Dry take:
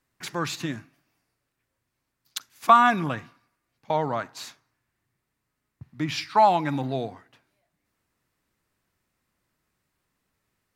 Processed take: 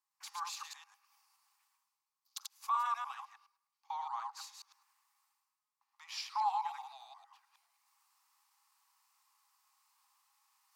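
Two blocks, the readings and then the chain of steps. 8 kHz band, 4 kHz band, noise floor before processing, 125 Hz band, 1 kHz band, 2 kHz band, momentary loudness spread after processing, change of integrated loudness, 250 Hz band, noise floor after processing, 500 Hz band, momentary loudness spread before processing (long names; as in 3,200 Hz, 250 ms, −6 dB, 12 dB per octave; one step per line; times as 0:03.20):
−8.0 dB, −11.5 dB, −81 dBFS, below −40 dB, −14.0 dB, −20.0 dB, 19 LU, −15.5 dB, below −40 dB, below −85 dBFS, below −35 dB, 20 LU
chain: delay that plays each chunk backwards 105 ms, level −2.5 dB
brickwall limiter −15 dBFS, peak gain reduction 11 dB
reversed playback
upward compression, threshold −46 dBFS
reversed playback
Chebyshev high-pass with heavy ripple 790 Hz, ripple 6 dB
flat-topped bell 2,300 Hz −9.5 dB
level −5 dB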